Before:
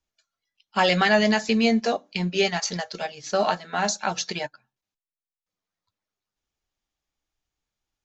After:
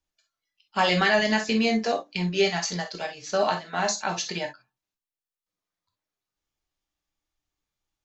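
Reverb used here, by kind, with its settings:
reverb whose tail is shaped and stops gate 80 ms flat, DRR 4.5 dB
level −2.5 dB

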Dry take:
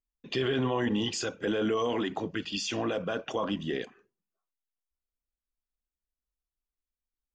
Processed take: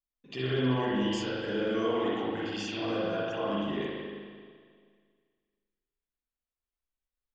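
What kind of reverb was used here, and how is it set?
spring reverb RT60 1.9 s, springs 39/54 ms, chirp 25 ms, DRR −8.5 dB
level −9.5 dB

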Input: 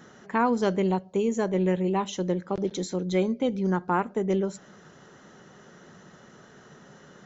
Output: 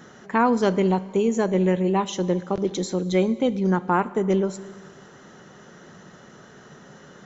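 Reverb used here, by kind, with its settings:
four-comb reverb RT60 2 s, combs from 28 ms, DRR 17 dB
level +4 dB

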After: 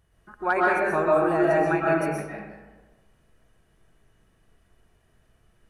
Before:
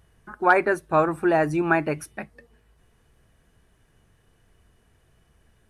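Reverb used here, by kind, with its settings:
comb and all-pass reverb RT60 1.2 s, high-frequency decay 0.55×, pre-delay 90 ms, DRR −4.5 dB
level −7 dB

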